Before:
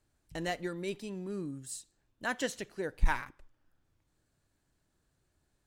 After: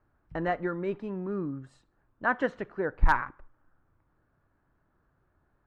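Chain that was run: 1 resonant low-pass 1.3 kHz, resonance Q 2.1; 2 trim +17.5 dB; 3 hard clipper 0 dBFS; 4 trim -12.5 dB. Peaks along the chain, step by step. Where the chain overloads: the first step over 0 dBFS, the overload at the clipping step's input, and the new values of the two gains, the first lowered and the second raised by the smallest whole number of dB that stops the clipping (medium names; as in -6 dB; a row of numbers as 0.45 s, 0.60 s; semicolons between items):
-14.5 dBFS, +3.0 dBFS, 0.0 dBFS, -12.5 dBFS; step 2, 3.0 dB; step 2 +14.5 dB, step 4 -9.5 dB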